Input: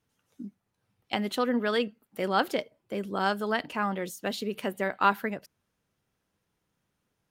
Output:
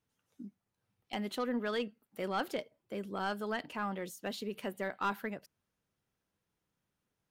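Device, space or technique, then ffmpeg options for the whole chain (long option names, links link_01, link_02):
saturation between pre-emphasis and de-emphasis: -af "highshelf=frequency=2300:gain=11.5,asoftclip=type=tanh:threshold=-16.5dB,highshelf=frequency=2300:gain=-11.5,volume=-6.5dB"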